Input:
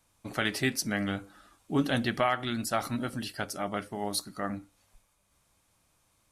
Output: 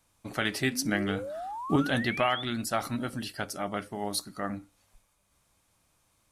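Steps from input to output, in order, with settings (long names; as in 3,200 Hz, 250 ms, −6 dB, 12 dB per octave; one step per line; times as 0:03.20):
0:00.85–0:01.76: transient designer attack +8 dB, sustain +4 dB
0:00.69–0:02.43: sound drawn into the spectrogram rise 220–3,600 Hz −37 dBFS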